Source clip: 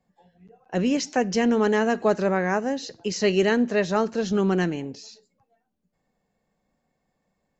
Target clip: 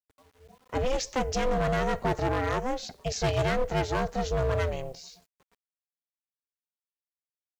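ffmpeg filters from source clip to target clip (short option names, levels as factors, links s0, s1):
-af "acrusher=bits=9:mix=0:aa=0.000001,aeval=exprs='val(0)*sin(2*PI*260*n/s)':c=same,volume=11.2,asoftclip=hard,volume=0.0891"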